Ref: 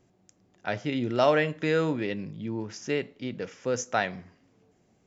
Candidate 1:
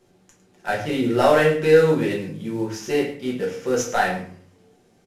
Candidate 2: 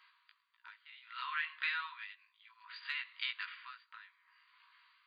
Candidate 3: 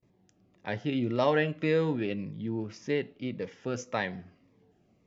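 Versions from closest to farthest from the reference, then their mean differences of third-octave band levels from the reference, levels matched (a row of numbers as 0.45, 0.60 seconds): 3, 1, 2; 2.0, 6.5, 17.5 decibels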